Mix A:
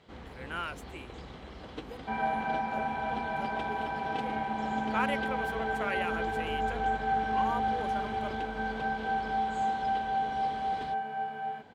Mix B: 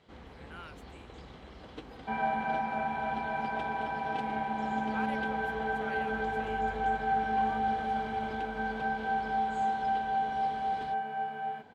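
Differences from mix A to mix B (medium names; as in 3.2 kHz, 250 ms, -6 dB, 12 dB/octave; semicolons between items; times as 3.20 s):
speech -11.5 dB; first sound -3.5 dB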